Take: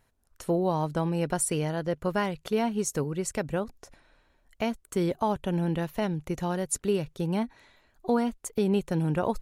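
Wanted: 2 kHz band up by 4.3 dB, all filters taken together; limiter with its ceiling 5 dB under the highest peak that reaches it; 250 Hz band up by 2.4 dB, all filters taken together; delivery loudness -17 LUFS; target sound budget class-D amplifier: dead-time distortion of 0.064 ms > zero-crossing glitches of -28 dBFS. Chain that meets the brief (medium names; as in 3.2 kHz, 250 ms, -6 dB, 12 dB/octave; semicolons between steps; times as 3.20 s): peaking EQ 250 Hz +3.5 dB; peaking EQ 2 kHz +5.5 dB; peak limiter -18.5 dBFS; dead-time distortion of 0.064 ms; zero-crossing glitches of -28 dBFS; trim +12.5 dB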